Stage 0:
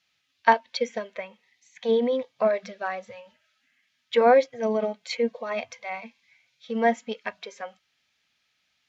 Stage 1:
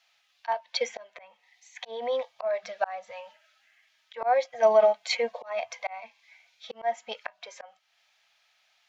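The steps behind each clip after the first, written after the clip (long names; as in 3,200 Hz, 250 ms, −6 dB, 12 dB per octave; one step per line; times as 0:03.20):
high-pass filter 79 Hz
low shelf with overshoot 470 Hz −14 dB, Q 3
volume swells 399 ms
level +4 dB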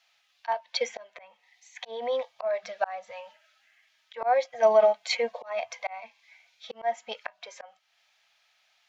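no processing that can be heard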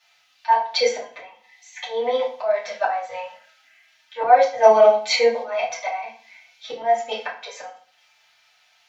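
feedback delay network reverb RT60 0.44 s, low-frequency decay 1.35×, high-frequency decay 0.85×, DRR −7 dB
level +1 dB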